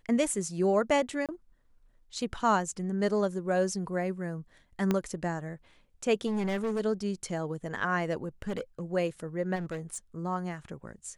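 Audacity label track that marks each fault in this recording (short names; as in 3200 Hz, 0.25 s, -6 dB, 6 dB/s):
1.260000	1.290000	gap 27 ms
4.910000	4.910000	pop -14 dBFS
6.260000	6.810000	clipped -27 dBFS
8.420000	8.820000	clipped -28.5 dBFS
9.550000	9.980000	clipped -31.5 dBFS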